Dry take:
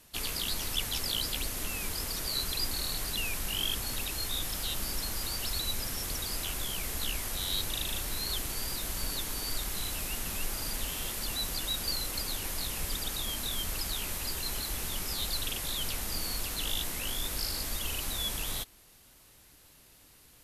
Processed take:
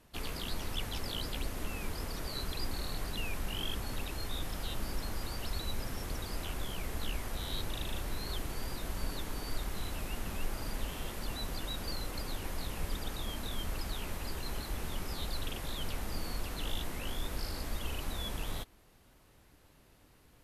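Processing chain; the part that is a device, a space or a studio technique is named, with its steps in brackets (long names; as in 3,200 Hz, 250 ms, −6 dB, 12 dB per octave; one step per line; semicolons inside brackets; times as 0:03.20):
through cloth (high-shelf EQ 2,700 Hz −14.5 dB)
level +1 dB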